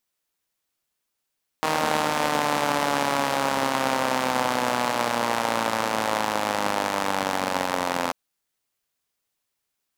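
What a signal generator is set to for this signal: four-cylinder engine model, changing speed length 6.49 s, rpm 4700, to 2600, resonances 270/560/820 Hz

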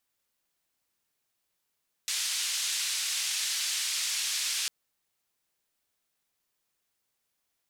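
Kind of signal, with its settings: noise band 2.6–7.3 kHz, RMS -31 dBFS 2.60 s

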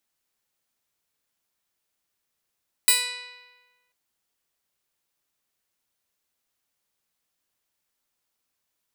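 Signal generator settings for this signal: plucked string B4, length 1.04 s, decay 1.35 s, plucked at 0.08, bright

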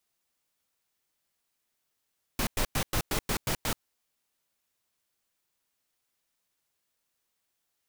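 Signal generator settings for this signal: noise bursts pink, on 0.08 s, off 0.10 s, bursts 8, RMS -28 dBFS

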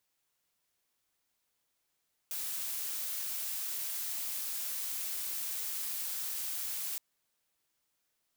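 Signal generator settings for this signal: noise blue, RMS -37 dBFS 4.67 s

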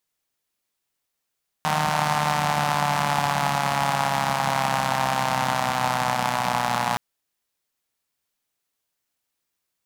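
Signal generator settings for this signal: four-cylinder engine model, changing speed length 5.32 s, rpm 4600, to 3600, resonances 180/810 Hz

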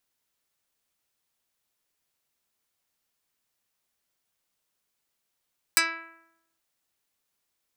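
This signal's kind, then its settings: plucked string E4, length 0.83 s, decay 0.88 s, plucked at 0.1, dark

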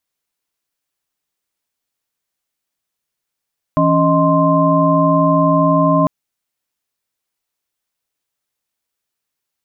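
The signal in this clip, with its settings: chord E3/C#4/D#5/C6 sine, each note -15.5 dBFS 2.30 s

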